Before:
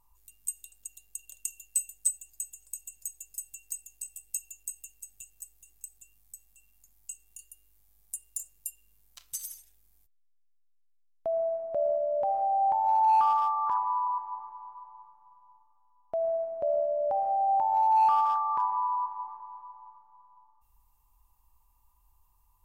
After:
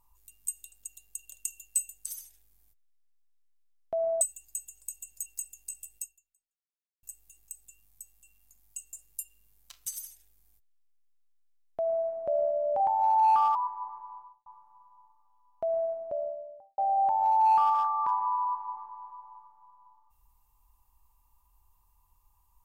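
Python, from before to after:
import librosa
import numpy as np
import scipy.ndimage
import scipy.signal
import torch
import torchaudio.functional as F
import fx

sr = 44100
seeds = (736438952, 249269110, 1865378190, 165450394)

y = fx.studio_fade_out(x, sr, start_s=14.64, length_s=0.33)
y = fx.studio_fade_out(y, sr, start_s=16.2, length_s=1.09)
y = fx.edit(y, sr, fx.cut(start_s=3.11, length_s=0.48),
    fx.fade_out_span(start_s=4.3, length_s=1.06, curve='exp'),
    fx.cut(start_s=7.26, length_s=1.14),
    fx.duplicate(start_s=9.39, length_s=2.15, to_s=2.06),
    fx.cut(start_s=12.27, length_s=0.38),
    fx.cut(start_s=13.4, length_s=0.66), tone=tone)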